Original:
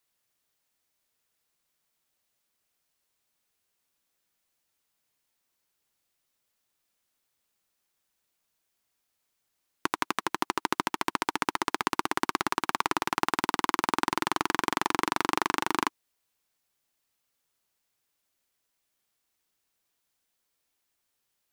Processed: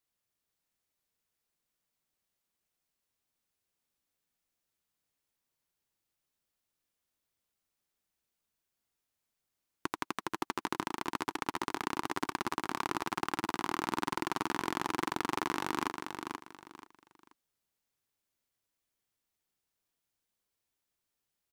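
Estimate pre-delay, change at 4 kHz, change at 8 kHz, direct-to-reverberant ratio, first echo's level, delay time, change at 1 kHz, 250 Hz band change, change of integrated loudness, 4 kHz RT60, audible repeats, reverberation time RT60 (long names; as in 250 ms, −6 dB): no reverb audible, −7.5 dB, −7.5 dB, no reverb audible, −6.0 dB, 482 ms, −6.5 dB, −4.0 dB, −7.0 dB, no reverb audible, 3, no reverb audible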